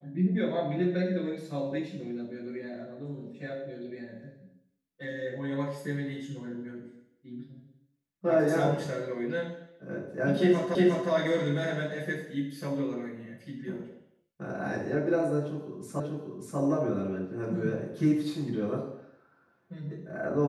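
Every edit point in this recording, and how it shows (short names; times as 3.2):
10.75 repeat of the last 0.36 s
16 repeat of the last 0.59 s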